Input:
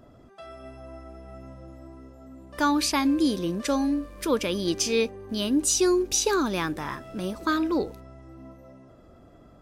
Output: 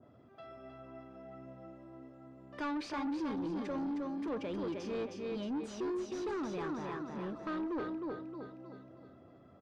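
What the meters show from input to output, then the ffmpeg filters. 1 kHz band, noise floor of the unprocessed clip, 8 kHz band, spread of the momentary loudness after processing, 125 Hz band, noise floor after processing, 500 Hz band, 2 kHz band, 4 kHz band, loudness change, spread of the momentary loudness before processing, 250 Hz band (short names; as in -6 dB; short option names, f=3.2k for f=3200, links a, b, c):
-12.0 dB, -53 dBFS, -30.5 dB, 16 LU, -10.5 dB, -60 dBFS, -11.5 dB, -14.5 dB, -21.0 dB, -13.0 dB, 22 LU, -11.0 dB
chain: -filter_complex "[0:a]highpass=f=86:w=0.5412,highpass=f=86:w=1.3066,asplit=2[a][b];[b]aecho=0:1:312|624|936|1248|1560:0.562|0.231|0.0945|0.0388|0.0159[c];[a][c]amix=inputs=2:normalize=0,asoftclip=type=tanh:threshold=-25.5dB,lowpass=3.5k,adynamicequalizer=threshold=0.00398:dfrequency=1700:dqfactor=0.7:tfrequency=1700:tqfactor=0.7:attack=5:release=100:ratio=0.375:range=4:mode=cutabove:tftype=highshelf,volume=-7.5dB"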